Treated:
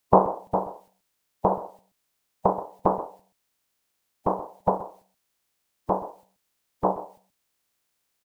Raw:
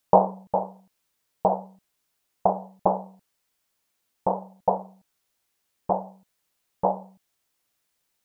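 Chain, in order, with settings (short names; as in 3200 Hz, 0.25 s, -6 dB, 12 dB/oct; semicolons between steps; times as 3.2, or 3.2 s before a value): spectral limiter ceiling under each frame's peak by 14 dB; echo 0.129 s -14.5 dB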